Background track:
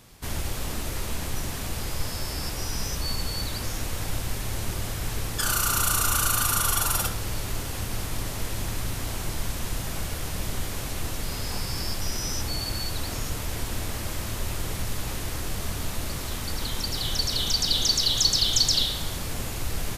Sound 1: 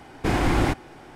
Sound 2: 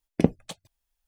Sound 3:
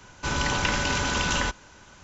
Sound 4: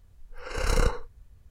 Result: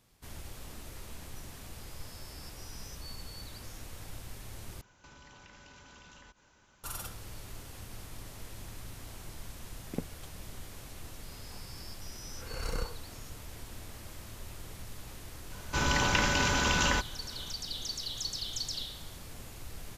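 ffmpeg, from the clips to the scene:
-filter_complex "[3:a]asplit=2[s0][s1];[0:a]volume=0.178[s2];[s0]acompressor=threshold=0.0126:ratio=6:attack=3.2:release=140:knee=1:detection=peak[s3];[s2]asplit=2[s4][s5];[s4]atrim=end=4.814[s6];[s3]atrim=end=2.03,asetpts=PTS-STARTPTS,volume=0.2[s7];[s5]atrim=start=6.836[s8];[2:a]atrim=end=1.07,asetpts=PTS-STARTPTS,volume=0.15,afade=t=in:d=0.004:c=hsin,afade=t=out:st=1.066:d=0.004:c=hsin,adelay=9740[s9];[4:a]atrim=end=1.5,asetpts=PTS-STARTPTS,volume=0.266,afade=t=in:d=0.004:c=hsin,afade=t=out:st=1.496:d=0.004:c=hsin,adelay=11960[s10];[s1]atrim=end=2.03,asetpts=PTS-STARTPTS,volume=0.794,afade=t=in:d=0.004:c=hsin,afade=t=out:st=2.026:d=0.004:c=hsin,adelay=15500[s11];[s6][s7]acrossfade=d=0.004:c1=hsin:c2=hsin[s12];[s12][s8]acrossfade=d=0.004:c1=hsin:c2=hsin[s13];[s13][s9][s10][s11]amix=inputs=4:normalize=0"

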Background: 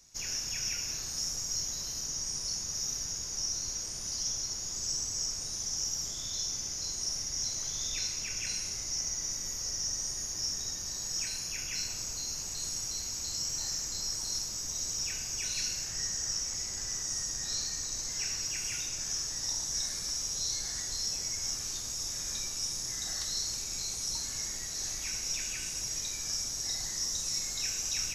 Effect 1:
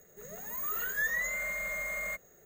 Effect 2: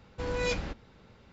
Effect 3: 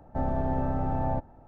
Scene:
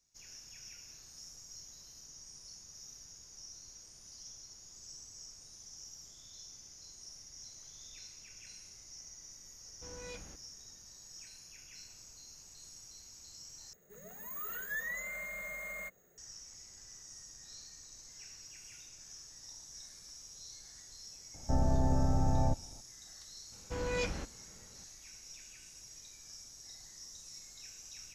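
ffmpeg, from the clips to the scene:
-filter_complex "[2:a]asplit=2[s0][s1];[0:a]volume=0.141[s2];[1:a]equalizer=f=190:t=o:w=0.77:g=3.5[s3];[3:a]lowshelf=f=190:g=8.5[s4];[s1]equalizer=f=3900:w=5:g=-4.5[s5];[s2]asplit=2[s6][s7];[s6]atrim=end=13.734[s8];[s3]atrim=end=2.45,asetpts=PTS-STARTPTS,volume=0.447[s9];[s7]atrim=start=16.176[s10];[s0]atrim=end=1.32,asetpts=PTS-STARTPTS,volume=0.141,afade=t=in:d=0.004:c=hsin,afade=t=out:st=1.316:d=0.004:c=hsin,adelay=9630[s11];[s4]atrim=end=1.47,asetpts=PTS-STARTPTS,volume=0.501,afade=t=in:d=0.004:c=hsin,afade=t=out:st=1.466:d=0.004:c=hsin,adelay=21340[s12];[s5]atrim=end=1.32,asetpts=PTS-STARTPTS,volume=0.631,afade=t=in:d=0.004:c=hsin,afade=t=out:st=1.316:d=0.004:c=hsin,adelay=23520[s13];[s8][s9]acrossfade=d=0.004:c1=hsin:c2=hsin[s14];[s14][s10]acrossfade=d=0.004:c1=hsin:c2=hsin[s15];[s15][s11][s12][s13]amix=inputs=4:normalize=0"

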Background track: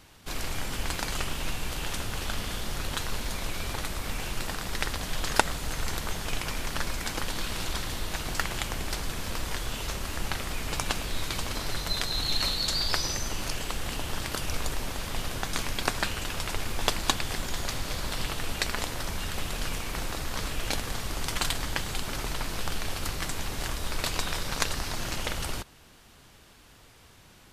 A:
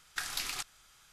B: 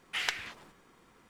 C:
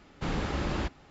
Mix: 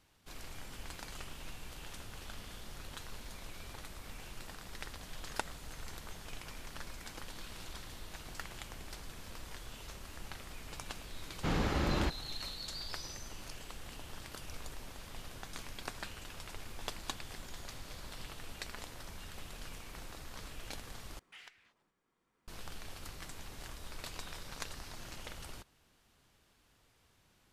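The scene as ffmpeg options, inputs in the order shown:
-filter_complex "[0:a]volume=0.178[s0];[2:a]acompressor=threshold=0.00794:ratio=2:attack=0.64:release=883:knee=1:detection=rms[s1];[s0]asplit=2[s2][s3];[s2]atrim=end=21.194[s4];[s1]atrim=end=1.29,asetpts=PTS-STARTPTS,volume=0.266[s5];[s3]atrim=start=22.476[s6];[3:a]atrim=end=1.1,asetpts=PTS-STARTPTS,volume=0.891,afade=t=in:d=0.004:c=hsin,afade=t=out:st=1.096:d=0.004:c=hsin,adelay=494802S[s7];[s4][s5]acrossfade=d=0.004:c1=hsin:c2=hsin[s8];[s8][s6]acrossfade=d=0.004:c1=hsin:c2=hsin[s9];[s9][s7]amix=inputs=2:normalize=0"

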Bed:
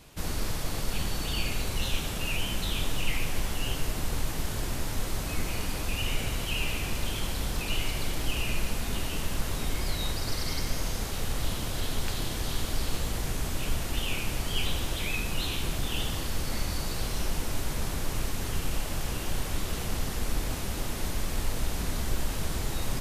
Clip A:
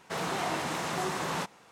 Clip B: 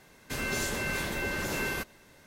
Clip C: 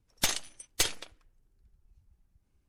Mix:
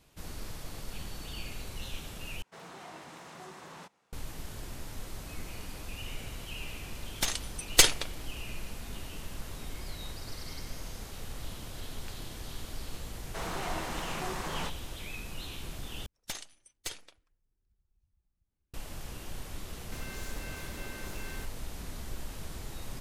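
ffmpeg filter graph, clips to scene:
-filter_complex "[1:a]asplit=2[s0][s1];[3:a]asplit=2[s2][s3];[0:a]volume=0.299[s4];[s2]dynaudnorm=f=110:g=9:m=6.31[s5];[2:a]asoftclip=type=hard:threshold=0.0251[s6];[s4]asplit=3[s7][s8][s9];[s7]atrim=end=2.424[s10];[s0]atrim=end=1.71,asetpts=PTS-STARTPTS,volume=0.168[s11];[s8]atrim=start=4.126:end=16.064[s12];[s3]atrim=end=2.68,asetpts=PTS-STARTPTS,volume=0.266[s13];[s9]atrim=start=18.736[s14];[s5]atrim=end=2.68,asetpts=PTS-STARTPTS,volume=0.531,afade=t=in:d=0.004:c=hsin,afade=t=out:st=2.676:d=0.004:c=hsin,adelay=6990[s15];[s1]atrim=end=1.71,asetpts=PTS-STARTPTS,volume=0.562,afade=t=in:d=0.004:c=hsin,afade=t=out:st=1.706:d=0.004:c=hsin,adelay=13240[s16];[s6]atrim=end=2.26,asetpts=PTS-STARTPTS,volume=0.299,afade=t=in:d=0.004:c=hsin,afade=t=out:st=2.256:d=0.004:c=hsin,adelay=19620[s17];[s10][s11]acrossfade=d=0.004:c1=hsin:c2=hsin[s18];[s18][s12]acrossfade=d=0.004:c1=hsin:c2=hsin[s19];[s19][s13]acrossfade=d=0.004:c1=hsin:c2=hsin[s20];[s20][s14]acrossfade=d=0.004:c1=hsin:c2=hsin[s21];[s21][s15][s16][s17]amix=inputs=4:normalize=0"

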